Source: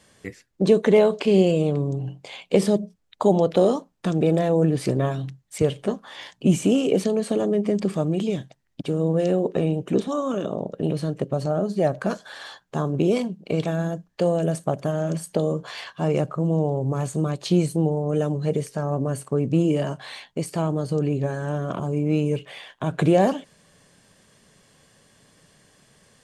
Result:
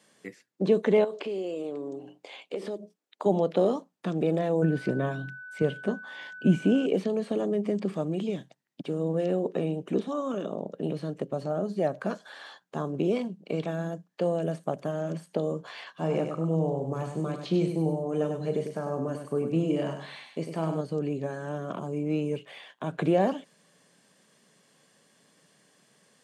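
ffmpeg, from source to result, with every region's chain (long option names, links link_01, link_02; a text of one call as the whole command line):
ffmpeg -i in.wav -filter_complex "[0:a]asettb=1/sr,asplit=3[link_01][link_02][link_03];[link_01]atrim=end=1.044[link_04];[link_02]atrim=start=1.04:end=3.26,asetpts=PTS-STARTPTS,afade=type=in:duration=0.004:curve=qsin,afade=type=out:start_time=2.216:duration=0.004:curve=qsin,lowshelf=frequency=210:width_type=q:width=1.5:gain=-13,acompressor=threshold=-25dB:ratio=4:attack=3.2:release=140:knee=1:detection=peak[link_05];[link_03]atrim=start=3.256[link_06];[link_04][link_05]acrossfade=duration=0.004:curve1=hsin:curve2=qsin[link_07];[link_07][link_06]acrossfade=duration=0.004:curve1=qsin:curve2=hsin,asettb=1/sr,asplit=3[link_08][link_09][link_10];[link_08]atrim=end=4.624[link_11];[link_09]atrim=start=4.62:end=6.86,asetpts=PTS-STARTPTS,afade=type=in:duration=0.004:curve=qsin,afade=type=out:start_time=2.236:duration=0.004:curve=qsin,bass=frequency=250:gain=5,treble=frequency=4000:gain=-4,aeval=exprs='val(0)+0.0178*sin(2*PI*1500*n/s)':channel_layout=same[link_12];[link_10]atrim=start=6.856[link_13];[link_11][link_12]acrossfade=duration=0.004:curve1=hsin:curve2=qsin[link_14];[link_14][link_13]acrossfade=duration=0.004:curve1=qsin:curve2=hsin,asettb=1/sr,asplit=3[link_15][link_16][link_17];[link_15]atrim=end=15.934[link_18];[link_16]atrim=start=15.93:end=20.81,asetpts=PTS-STARTPTS,afade=type=in:duration=0.004:curve=qsin,afade=type=out:start_time=4.876:duration=0.004:curve=qsin,asplit=2[link_19][link_20];[link_20]adelay=37,volume=-11dB[link_21];[link_19][link_21]amix=inputs=2:normalize=0,atrim=end_sample=215208,aecho=1:1:99|198|297:0.447|0.121|0.0326,atrim=end_sample=215208[link_22];[link_17]atrim=start=20.806[link_23];[link_18][link_22]acrossfade=duration=0.004:curve1=hsin:curve2=qsin[link_24];[link_24][link_23]acrossfade=duration=0.004:curve1=qsin:curve2=hsin,highpass=frequency=160:width=0.5412,highpass=frequency=160:width=1.3066,acrossover=split=4000[link_25][link_26];[link_26]acompressor=threshold=-52dB:ratio=4:attack=1:release=60[link_27];[link_25][link_27]amix=inputs=2:normalize=0,volume=-5.5dB" out.wav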